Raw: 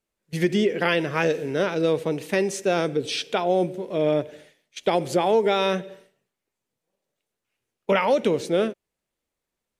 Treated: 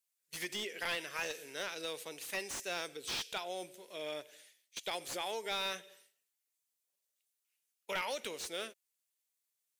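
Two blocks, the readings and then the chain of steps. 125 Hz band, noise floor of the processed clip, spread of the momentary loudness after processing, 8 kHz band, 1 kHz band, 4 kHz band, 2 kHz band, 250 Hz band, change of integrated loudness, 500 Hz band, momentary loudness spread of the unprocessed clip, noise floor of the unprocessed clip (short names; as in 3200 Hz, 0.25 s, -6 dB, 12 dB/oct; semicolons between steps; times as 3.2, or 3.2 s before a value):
-28.5 dB, under -85 dBFS, 10 LU, -5.0 dB, -16.0 dB, -7.5 dB, -11.0 dB, -25.5 dB, -16.0 dB, -21.0 dB, 8 LU, -84 dBFS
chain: differentiator; slew limiter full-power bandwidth 53 Hz; gain +1.5 dB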